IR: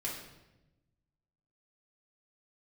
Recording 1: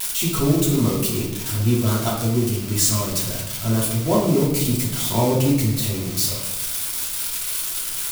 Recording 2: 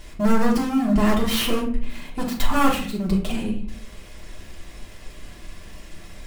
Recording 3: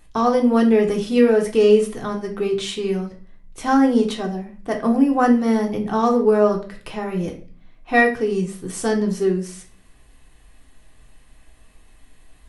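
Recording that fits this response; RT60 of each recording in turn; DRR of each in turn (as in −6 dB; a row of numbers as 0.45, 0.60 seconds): 1; 1.0 s, non-exponential decay, 0.40 s; −6.0, −5.0, 0.5 decibels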